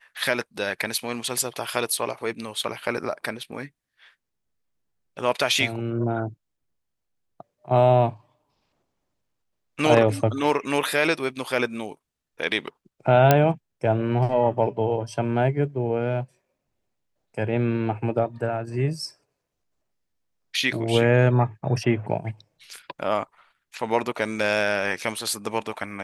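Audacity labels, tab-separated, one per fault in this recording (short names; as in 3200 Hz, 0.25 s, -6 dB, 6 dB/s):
13.310000	13.310000	pop -2 dBFS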